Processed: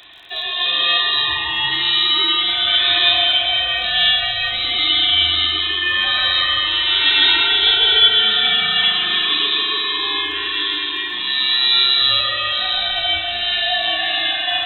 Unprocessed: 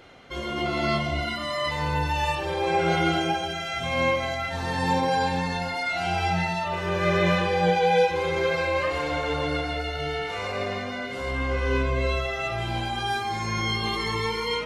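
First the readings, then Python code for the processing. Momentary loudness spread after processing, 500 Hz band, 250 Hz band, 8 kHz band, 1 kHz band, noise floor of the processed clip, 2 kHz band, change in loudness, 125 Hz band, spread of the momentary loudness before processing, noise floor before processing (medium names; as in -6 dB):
7 LU, -7.0 dB, -7.5 dB, under -15 dB, -0.5 dB, -24 dBFS, +9.0 dB, +11.0 dB, under -10 dB, 7 LU, -32 dBFS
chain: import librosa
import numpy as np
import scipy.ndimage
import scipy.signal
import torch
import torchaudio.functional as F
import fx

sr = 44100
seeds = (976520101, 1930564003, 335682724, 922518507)

y = fx.freq_invert(x, sr, carrier_hz=3900)
y = fx.dmg_crackle(y, sr, seeds[0], per_s=34.0, level_db=-43.0)
y = fx.rev_spring(y, sr, rt60_s=4.0, pass_ms=(37,), chirp_ms=30, drr_db=2.0)
y = y * 10.0 ** (6.5 / 20.0)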